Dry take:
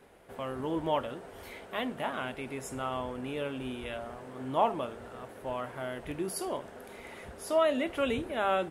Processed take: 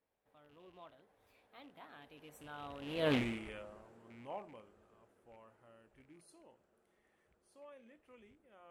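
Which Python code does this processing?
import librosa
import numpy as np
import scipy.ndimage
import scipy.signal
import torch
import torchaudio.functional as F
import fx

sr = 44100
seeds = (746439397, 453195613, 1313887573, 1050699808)

y = fx.rattle_buzz(x, sr, strikes_db=-41.0, level_db=-33.0)
y = fx.doppler_pass(y, sr, speed_mps=39, closest_m=2.0, pass_at_s=3.13)
y = fx.doppler_dist(y, sr, depth_ms=0.31)
y = y * librosa.db_to_amplitude(7.5)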